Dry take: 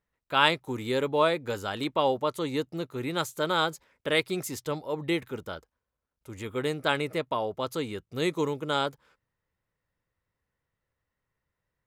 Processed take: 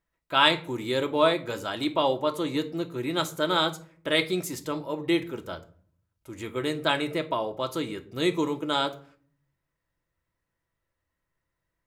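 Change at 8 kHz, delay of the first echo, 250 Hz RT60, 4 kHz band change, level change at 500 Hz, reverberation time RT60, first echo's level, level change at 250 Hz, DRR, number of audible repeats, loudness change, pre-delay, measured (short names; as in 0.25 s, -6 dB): +1.0 dB, none, 0.80 s, +4.0 dB, +1.0 dB, 0.50 s, none, +3.5 dB, 5.0 dB, none, +2.0 dB, 3 ms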